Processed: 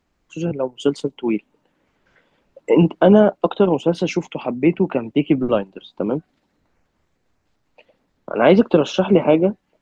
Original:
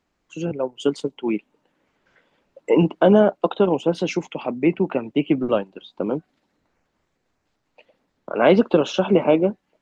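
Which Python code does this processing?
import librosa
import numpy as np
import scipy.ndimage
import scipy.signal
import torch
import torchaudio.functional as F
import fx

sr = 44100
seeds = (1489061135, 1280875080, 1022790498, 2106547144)

y = fx.low_shelf(x, sr, hz=130.0, db=7.5)
y = y * librosa.db_to_amplitude(1.5)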